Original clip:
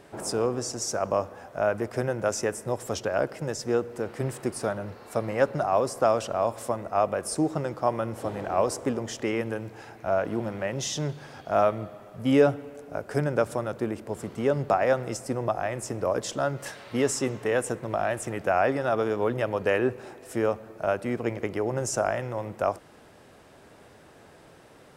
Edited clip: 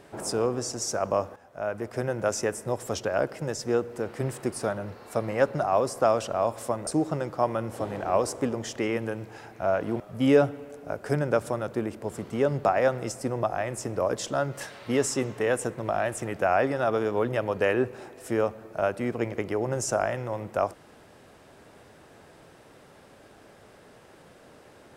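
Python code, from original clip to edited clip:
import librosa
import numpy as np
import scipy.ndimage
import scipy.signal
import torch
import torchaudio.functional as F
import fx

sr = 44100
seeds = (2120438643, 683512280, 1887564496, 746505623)

y = fx.edit(x, sr, fx.fade_in_from(start_s=1.36, length_s=0.84, floor_db=-12.5),
    fx.cut(start_s=6.87, length_s=0.44),
    fx.cut(start_s=10.44, length_s=1.61), tone=tone)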